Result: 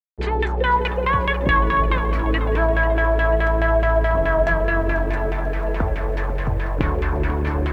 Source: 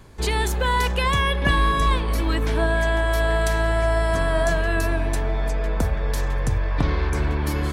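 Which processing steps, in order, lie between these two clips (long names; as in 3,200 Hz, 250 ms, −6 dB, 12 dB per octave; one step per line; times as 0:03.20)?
bit reduction 6 bits
auto-filter low-pass saw down 4.7 Hz 370–2,700 Hz
tape delay 179 ms, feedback 67%, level −15 dB, low-pass 2,900 Hz
feedback echo at a low word length 492 ms, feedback 55%, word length 8 bits, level −12.5 dB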